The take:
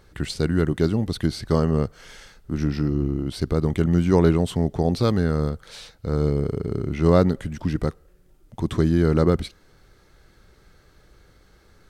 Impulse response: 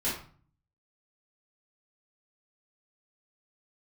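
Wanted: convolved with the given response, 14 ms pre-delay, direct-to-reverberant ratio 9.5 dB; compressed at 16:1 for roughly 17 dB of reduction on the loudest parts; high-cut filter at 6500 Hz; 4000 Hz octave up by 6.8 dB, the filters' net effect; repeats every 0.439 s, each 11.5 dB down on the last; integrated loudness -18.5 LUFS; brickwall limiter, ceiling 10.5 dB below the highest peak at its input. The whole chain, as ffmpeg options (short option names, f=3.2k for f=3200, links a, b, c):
-filter_complex "[0:a]lowpass=6.5k,equalizer=f=4k:t=o:g=8.5,acompressor=threshold=-29dB:ratio=16,alimiter=level_in=5.5dB:limit=-24dB:level=0:latency=1,volume=-5.5dB,aecho=1:1:439|878|1317:0.266|0.0718|0.0194,asplit=2[a][b];[1:a]atrim=start_sample=2205,adelay=14[c];[b][c]afir=irnorm=-1:irlink=0,volume=-17dB[d];[a][d]amix=inputs=2:normalize=0,volume=20dB"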